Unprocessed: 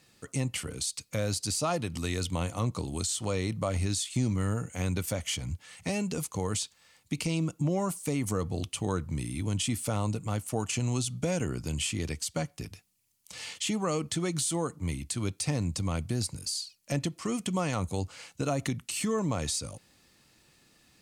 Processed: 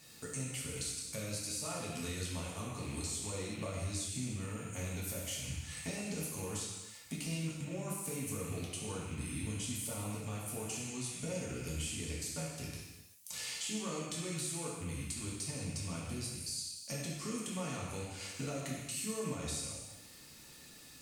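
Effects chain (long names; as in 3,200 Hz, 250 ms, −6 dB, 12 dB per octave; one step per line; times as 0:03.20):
loose part that buzzes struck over −38 dBFS, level −33 dBFS
high-shelf EQ 6,100 Hz +10 dB
downward compressor 5 to 1, threshold −43 dBFS, peak gain reduction 19 dB
reverb whose tail is shaped and stops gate 420 ms falling, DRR −5 dB
level −1.5 dB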